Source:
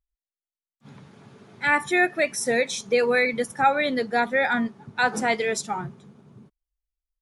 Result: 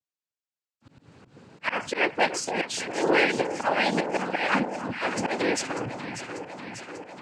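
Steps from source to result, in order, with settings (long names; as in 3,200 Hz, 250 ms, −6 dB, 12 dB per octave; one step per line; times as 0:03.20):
cochlear-implant simulation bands 8
volume swells 135 ms
delay that swaps between a low-pass and a high-pass 296 ms, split 1,100 Hz, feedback 83%, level −8.5 dB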